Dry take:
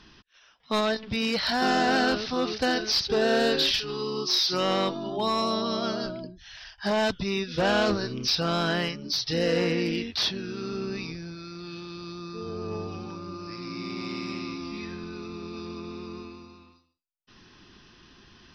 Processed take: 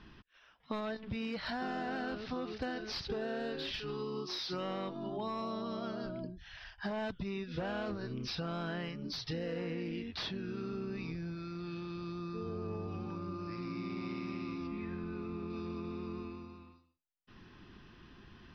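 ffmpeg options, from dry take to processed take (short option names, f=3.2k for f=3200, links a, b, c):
-filter_complex "[0:a]asettb=1/sr,asplit=3[a][b][c];[a]atrim=end=14.674[d];[b]atrim=start=14.67:end=15.5,asetpts=PTS-STARTPTS,afade=t=in:d=0.004:c=qsin,afade=t=out:st=0.826:d=0.004:c=qsin,acrossover=split=2900[e][f];[f]acompressor=threshold=-58dB:ratio=4:attack=1:release=60[g];[e][g]amix=inputs=2:normalize=0[h];[c]atrim=start=15.496[i];[d][h]acrossfade=d=0.004:c1=hsin:c2=qsin[j];[j][i]acrossfade=d=0.004:c1=qsin:c2=hsin,bass=f=250:g=4,treble=f=4k:g=-15,acompressor=threshold=-33dB:ratio=6,volume=-3dB"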